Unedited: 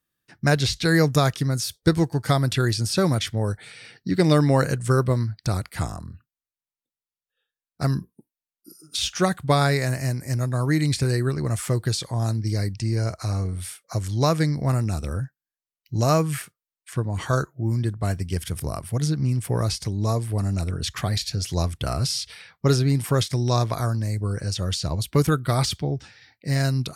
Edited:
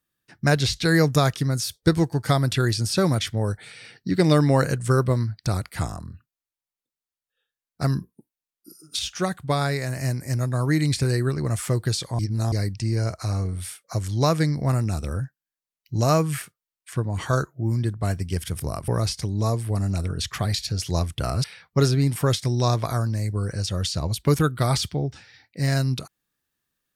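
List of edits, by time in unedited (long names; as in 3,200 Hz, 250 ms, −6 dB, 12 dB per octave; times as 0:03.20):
0:08.99–0:09.96: clip gain −4 dB
0:12.19–0:12.52: reverse
0:18.88–0:19.51: remove
0:22.07–0:22.32: remove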